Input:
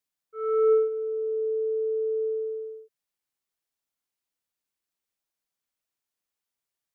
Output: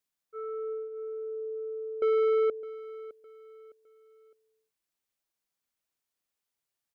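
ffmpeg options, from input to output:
ffmpeg -i in.wav -filter_complex "[0:a]acompressor=threshold=-37dB:ratio=4,asettb=1/sr,asplit=3[link_01][link_02][link_03];[link_01]atrim=end=2.024[link_04];[link_02]atrim=start=2.02:end=2.5,asetpts=PTS-STARTPTS,afade=type=in:duration=0.004:curve=qsin,afade=type=out:start_time=0.476:duration=0.004:curve=qsin,asplit=2[link_05][link_06];[link_06]highpass=frequency=720:poles=1,volume=35dB,asoftclip=type=tanh:threshold=-16.5dB[link_07];[link_05][link_07]amix=inputs=2:normalize=0,lowpass=frequency=1000:poles=1,volume=-6dB[link_08];[link_03]atrim=start=2.496[link_09];[link_04][link_08]acrossfade=duration=0.004:curve1=hsin:curve2=qsin[link_10];[link_10][link_09]acrossfade=duration=0.004:curve1=qsin:curve2=hsin,aecho=1:1:610|1220|1830:0.141|0.0494|0.0173" out.wav

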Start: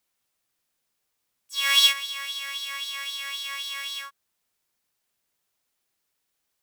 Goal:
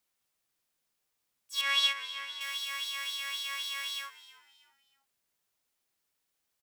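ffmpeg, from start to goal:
ffmpeg -i in.wav -filter_complex "[0:a]asettb=1/sr,asplit=3[link_01][link_02][link_03];[link_01]atrim=end=1.614[link_04];[link_02]atrim=start=1.61:end=2.41,asetpts=PTS-STARTPTS,afade=type=in:duration=0.004:curve=qsin,afade=type=out:start_time=0.796:duration=0.004:curve=qsin,aemphasis=mode=reproduction:type=75kf[link_05];[link_03]atrim=start=2.406[link_06];[link_04][link_05]acrossfade=duration=0.004:curve1=hsin:curve2=qsin[link_07];[link_07][link_06]acrossfade=duration=0.004:curve1=qsin:curve2=hsin,asplit=4[link_08][link_09][link_10][link_11];[link_09]adelay=317,afreqshift=-98,volume=-18dB[link_12];[link_10]adelay=634,afreqshift=-196,volume=-26.9dB[link_13];[link_11]adelay=951,afreqshift=-294,volume=-35.7dB[link_14];[link_08][link_12][link_13][link_14]amix=inputs=4:normalize=0,volume=-3.5dB" out.wav

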